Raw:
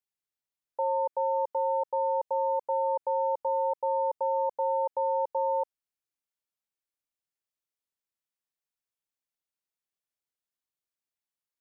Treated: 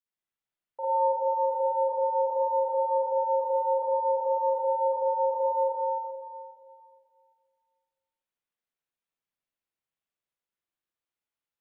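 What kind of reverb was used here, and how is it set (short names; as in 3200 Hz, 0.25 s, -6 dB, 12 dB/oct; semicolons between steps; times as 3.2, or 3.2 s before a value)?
spring tank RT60 2.2 s, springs 43/52/58 ms, chirp 60 ms, DRR -9 dB; gain -7 dB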